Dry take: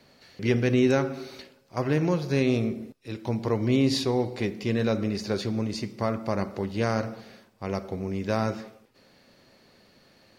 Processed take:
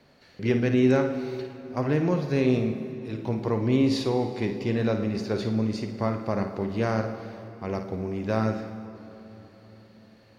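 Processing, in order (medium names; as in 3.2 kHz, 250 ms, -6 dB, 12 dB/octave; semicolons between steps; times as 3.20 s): treble shelf 3.5 kHz -8 dB; flutter echo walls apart 9.4 m, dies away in 0.35 s; on a send at -11.5 dB: reverberation RT60 3.9 s, pre-delay 81 ms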